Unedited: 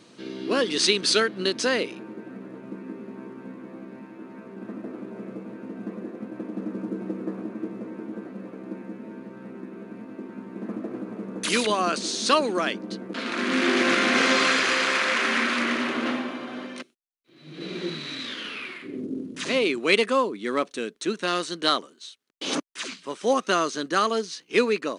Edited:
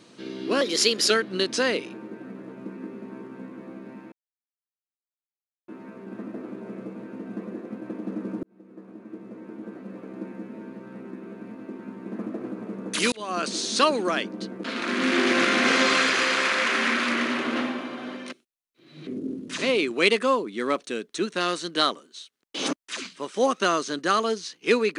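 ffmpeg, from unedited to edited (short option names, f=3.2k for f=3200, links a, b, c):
-filter_complex "[0:a]asplit=7[a][b][c][d][e][f][g];[a]atrim=end=0.614[h];[b]atrim=start=0.61:end=1.16,asetpts=PTS-STARTPTS,asetrate=49392,aresample=44100,atrim=end_sample=21656,asetpts=PTS-STARTPTS[i];[c]atrim=start=1.156:end=4.18,asetpts=PTS-STARTPTS,afade=t=out:st=3.02:d=0.004:c=hsin,apad=pad_dur=1.56[j];[d]atrim=start=4.18:end=6.93,asetpts=PTS-STARTPTS,afade=t=in:d=0.004:c=hsin,afade=t=out:st=2.746:d=0.004:c=hsin[k];[e]atrim=start=6.93:end=11.62,asetpts=PTS-STARTPTS,afade=t=in:d=1.71,afade=t=out:st=4.686:d=0.004:c=hsin[l];[f]atrim=start=11.62:end=17.572,asetpts=PTS-STARTPTS,afade=t=in:d=0.37[m];[g]atrim=start=18.938[n];[h][i]acrossfade=d=0.004:c1=hsin:c2=hsin[o];[j][k][l][m]concat=n=4:v=0:a=1[p];[o][p]acrossfade=d=0.004:c1=hsin:c2=hsin[q];[q][n]acrossfade=d=0.004:c1=hsin:c2=hsin"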